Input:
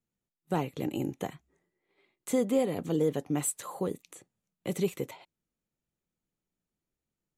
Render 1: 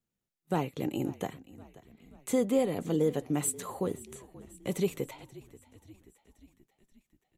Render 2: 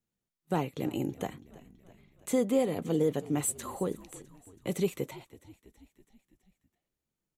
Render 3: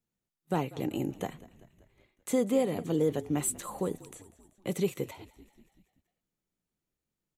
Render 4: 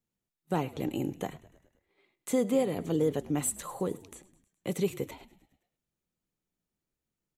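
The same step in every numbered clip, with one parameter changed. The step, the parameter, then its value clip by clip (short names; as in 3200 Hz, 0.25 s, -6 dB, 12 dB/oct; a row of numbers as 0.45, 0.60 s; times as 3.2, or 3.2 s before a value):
frequency-shifting echo, time: 0.532, 0.328, 0.192, 0.104 s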